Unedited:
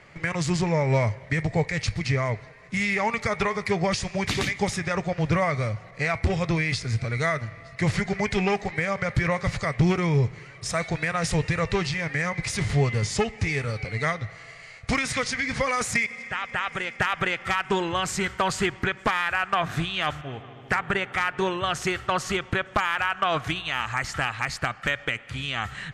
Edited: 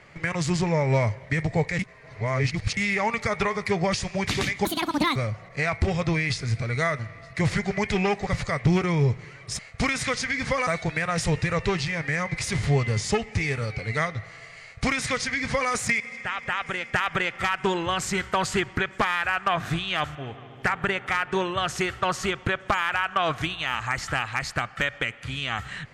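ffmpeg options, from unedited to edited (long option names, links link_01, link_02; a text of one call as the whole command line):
ffmpeg -i in.wav -filter_complex "[0:a]asplit=8[link_01][link_02][link_03][link_04][link_05][link_06][link_07][link_08];[link_01]atrim=end=1.792[link_09];[link_02]atrim=start=1.788:end=2.772,asetpts=PTS-STARTPTS,areverse[link_10];[link_03]atrim=start=2.768:end=4.654[link_11];[link_04]atrim=start=4.65:end=5.58,asetpts=PTS-STARTPTS,asetrate=80703,aresample=44100,atrim=end_sample=22411,asetpts=PTS-STARTPTS[link_12];[link_05]atrim=start=5.576:end=8.692[link_13];[link_06]atrim=start=9.408:end=10.732[link_14];[link_07]atrim=start=14.678:end=15.762[link_15];[link_08]atrim=start=10.728[link_16];[link_09][link_10]acrossfade=duration=0.004:curve1=hsin:curve2=hsin[link_17];[link_17][link_11]acrossfade=duration=0.004:curve1=hsin:curve2=hsin[link_18];[link_18][link_12]acrossfade=duration=0.004:curve1=hsin:curve2=hsin[link_19];[link_19][link_13]acrossfade=duration=0.004:curve1=hsin:curve2=hsin[link_20];[link_20][link_14]acrossfade=duration=0.004:curve1=hsin:curve2=hsin[link_21];[link_21][link_15]acrossfade=duration=0.004:curve1=hsin:curve2=hsin[link_22];[link_22][link_16]acrossfade=duration=0.004:curve1=hsin:curve2=hsin" out.wav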